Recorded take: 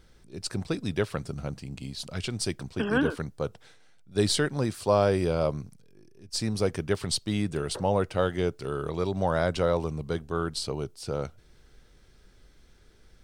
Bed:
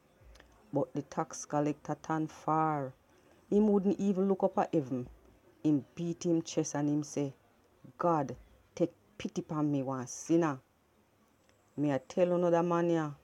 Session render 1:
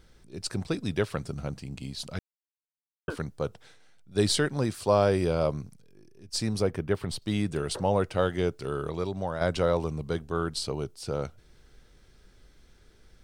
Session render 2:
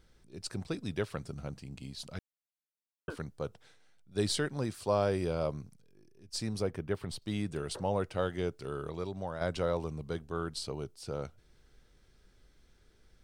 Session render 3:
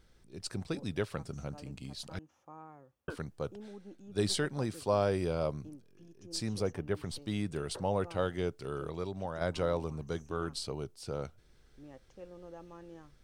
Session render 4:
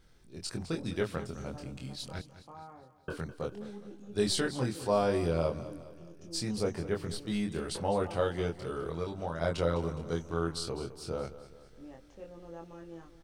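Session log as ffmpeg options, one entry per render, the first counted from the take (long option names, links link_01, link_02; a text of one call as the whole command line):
ffmpeg -i in.wav -filter_complex "[0:a]asettb=1/sr,asplit=3[link_01][link_02][link_03];[link_01]atrim=end=6.624[link_04];[link_02]atrim=start=6.62:end=7.22,asetpts=PTS-STARTPTS,afade=type=in:duration=0.004:curve=qsin,afade=type=out:start_time=0.596:duration=0.004:curve=qsin,equalizer=frequency=6500:width_type=o:width=2:gain=-11.5[link_05];[link_03]atrim=start=7.216[link_06];[link_04][link_05]acrossfade=duration=0.004:curve1=hsin:curve2=qsin[link_07];[link_07][link_06]acrossfade=duration=0.004:curve1=qsin:curve2=hsin,asplit=4[link_08][link_09][link_10][link_11];[link_08]atrim=end=2.19,asetpts=PTS-STARTPTS,afade=type=out:start_time=2.186:duration=0.004:curve=hsin[link_12];[link_09]atrim=start=2.19:end=3.08,asetpts=PTS-STARTPTS,volume=0[link_13];[link_10]atrim=start=3.08:end=9.41,asetpts=PTS-STARTPTS,afade=type=in:duration=0.004:curve=hsin,afade=type=out:start_time=5.7:duration=0.63:silence=0.375837[link_14];[link_11]atrim=start=9.41,asetpts=PTS-STARTPTS,afade=type=in:duration=0.004:curve=hsin:silence=0.375837[link_15];[link_12][link_13][link_14][link_15]concat=n=4:v=0:a=1" out.wav
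ffmpeg -i in.wav -af "volume=-6.5dB" out.wav
ffmpeg -i in.wav -i bed.wav -filter_complex "[1:a]volume=-21dB[link_01];[0:a][link_01]amix=inputs=2:normalize=0" out.wav
ffmpeg -i in.wav -filter_complex "[0:a]asplit=2[link_01][link_02];[link_02]adelay=24,volume=-2.5dB[link_03];[link_01][link_03]amix=inputs=2:normalize=0,aecho=1:1:207|414|621|828|1035:0.188|0.0923|0.0452|0.0222|0.0109" out.wav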